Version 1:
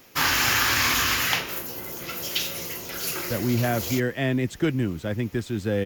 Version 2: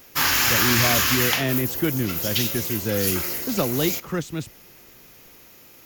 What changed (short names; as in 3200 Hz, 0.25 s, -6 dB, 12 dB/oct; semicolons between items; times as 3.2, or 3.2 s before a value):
speech: entry -2.80 s; master: add high shelf 7400 Hz +7.5 dB